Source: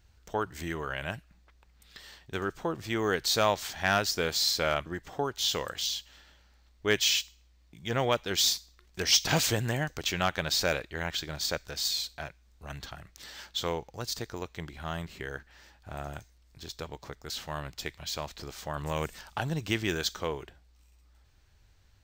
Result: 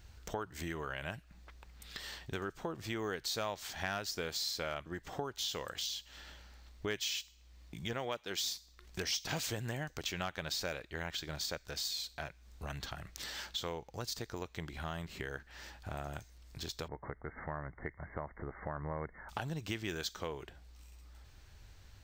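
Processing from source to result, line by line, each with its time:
0:07.93–0:08.39: high-pass filter 200 Hz 6 dB per octave
0:16.88–0:19.29: linear-phase brick-wall low-pass 2,200 Hz
whole clip: downward compressor 3 to 1, threshold −47 dBFS; level +6 dB

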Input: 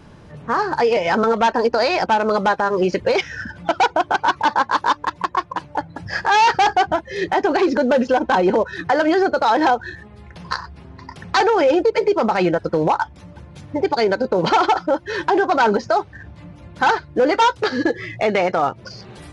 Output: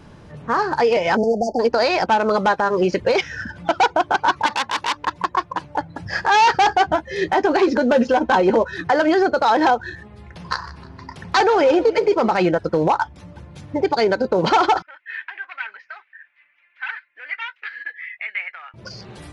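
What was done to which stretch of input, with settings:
0:01.17–0:01.60: time-frequency box erased 880–4,400 Hz
0:04.46–0:05.07: saturating transformer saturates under 3,000 Hz
0:06.70–0:08.77: double-tracking delay 13 ms −11 dB
0:10.47–0:12.34: feedback echo with a swinging delay time 156 ms, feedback 42%, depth 138 cents, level −17 dB
0:14.82–0:18.74: flat-topped band-pass 2,100 Hz, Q 2.3

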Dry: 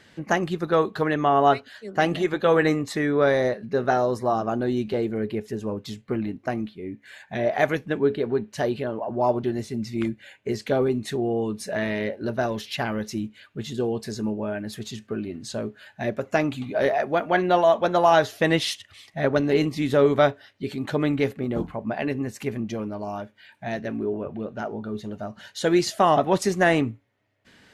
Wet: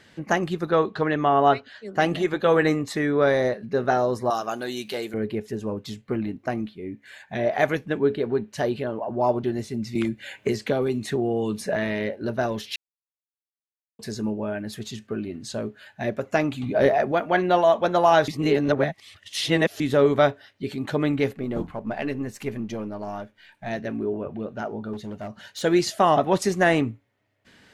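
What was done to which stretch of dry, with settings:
0:00.71–0:01.86: low-pass filter 5,400 Hz
0:04.30–0:05.14: spectral tilt +4.5 dB per octave
0:09.95–0:11.76: multiband upward and downward compressor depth 100%
0:12.76–0:13.99: silence
0:16.63–0:17.12: low-shelf EQ 450 Hz +7.5 dB
0:18.28–0:19.80: reverse
0:21.33–0:23.70: gain on one half-wave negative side −3 dB
0:24.93–0:25.62: hard clipping −29.5 dBFS

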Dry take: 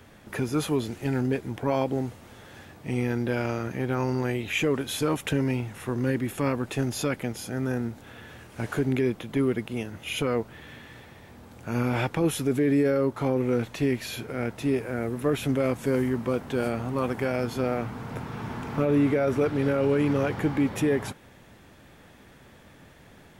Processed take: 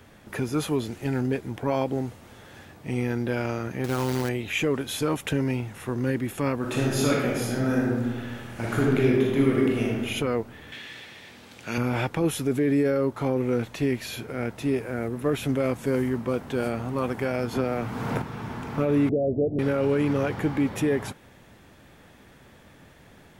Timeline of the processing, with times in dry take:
0:03.84–0:04.29: log-companded quantiser 4 bits
0:06.57–0:10.03: thrown reverb, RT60 1.4 s, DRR −4 dB
0:10.72–0:11.78: meter weighting curve D
0:15.08–0:16.34: one half of a high-frequency compander decoder only
0:17.53–0:18.22: multiband upward and downward compressor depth 100%
0:19.09–0:19.59: Butterworth low-pass 700 Hz 72 dB per octave

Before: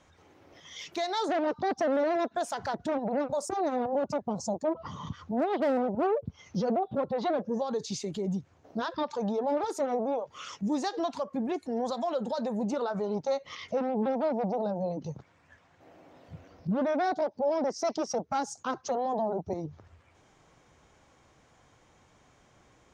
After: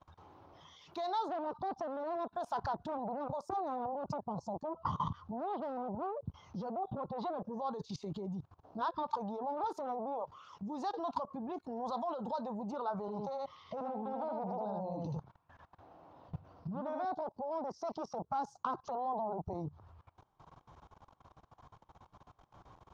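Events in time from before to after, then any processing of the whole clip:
0:13.00–0:17.05: single-tap delay 79 ms −4.5 dB
whole clip: high-shelf EQ 2,200 Hz −9.5 dB; output level in coarse steps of 21 dB; octave-band graphic EQ 250/500/1,000/2,000/4,000/8,000 Hz −5/−6/+9/−11/+4/−11 dB; level +6.5 dB

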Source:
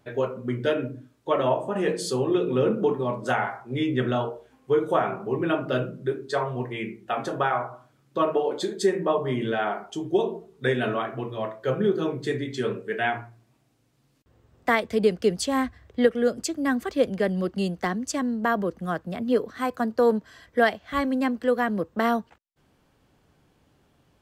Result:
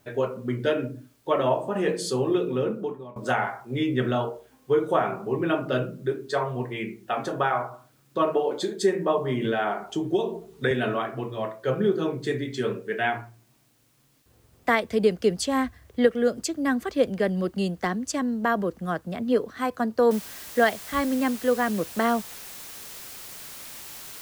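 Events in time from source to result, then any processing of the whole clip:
0:02.29–0:03.16: fade out, to −20.5 dB
0:09.44–0:10.71: multiband upward and downward compressor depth 70%
0:20.11: noise floor change −67 dB −41 dB

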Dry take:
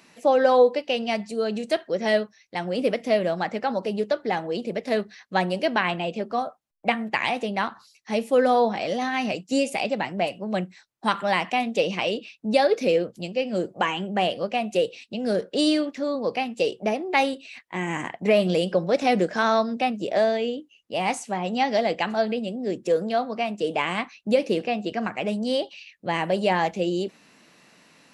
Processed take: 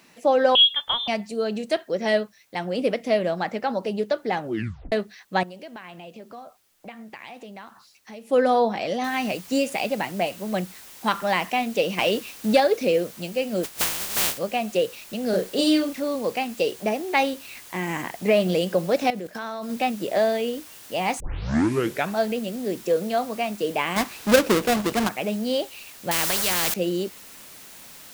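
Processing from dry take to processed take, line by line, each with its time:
0:00.55–0:01.08: voice inversion scrambler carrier 3,800 Hz
0:04.39: tape stop 0.53 s
0:05.43–0:08.30: downward compressor 3 to 1, threshold −42 dBFS
0:09.04: noise floor change −66 dB −45 dB
0:11.98–0:12.60: leveller curve on the samples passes 1
0:13.63–0:14.37: compressing power law on the bin magnitudes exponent 0.11
0:15.30–0:16.00: double-tracking delay 32 ms −4 dB
0:19.10–0:19.70: output level in coarse steps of 16 dB
0:21.20: tape start 0.97 s
0:23.96–0:25.09: each half-wave held at its own peak
0:26.11–0:26.74: every bin compressed towards the loudest bin 4 to 1

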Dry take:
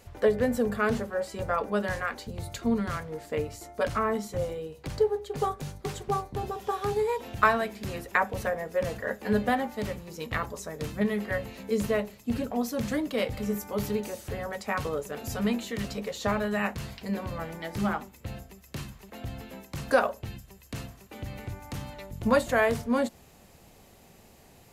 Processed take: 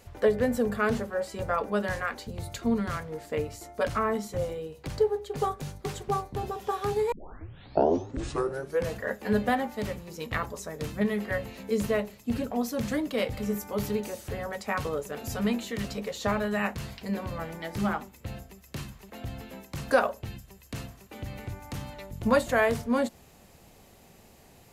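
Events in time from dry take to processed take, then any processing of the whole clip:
0:07.12: tape start 1.83 s

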